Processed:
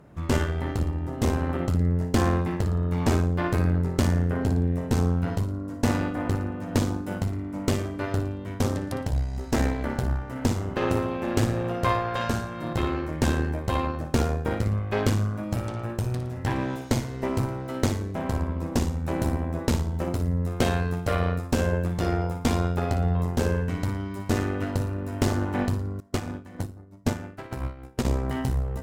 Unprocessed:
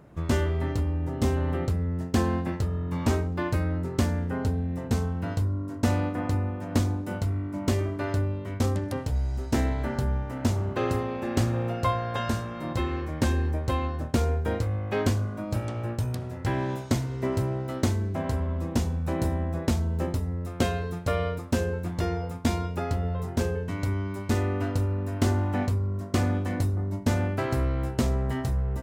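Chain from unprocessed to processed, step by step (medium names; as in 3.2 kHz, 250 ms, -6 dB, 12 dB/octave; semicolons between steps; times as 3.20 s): flutter echo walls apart 9.8 m, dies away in 0.4 s; Chebyshev shaper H 4 -13 dB, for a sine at -11.5 dBFS; 26.00–28.05 s: upward expansion 2.5:1, over -32 dBFS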